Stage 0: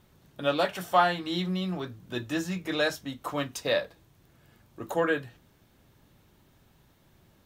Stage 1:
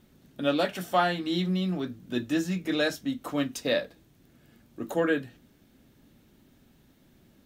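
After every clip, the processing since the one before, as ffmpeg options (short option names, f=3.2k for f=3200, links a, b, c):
-af "equalizer=f=100:t=o:w=0.67:g=-4,equalizer=f=250:t=o:w=0.67:g=9,equalizer=f=1k:t=o:w=0.67:g=-6"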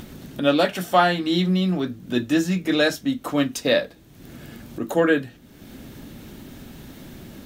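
-af "acompressor=mode=upward:threshold=-35dB:ratio=2.5,volume=7dB"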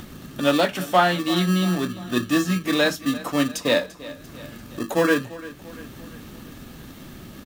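-filter_complex "[0:a]acrossover=split=390[a][b];[a]acrusher=samples=30:mix=1:aa=0.000001[c];[c][b]amix=inputs=2:normalize=0,aecho=1:1:343|686|1029|1372|1715:0.133|0.072|0.0389|0.021|0.0113"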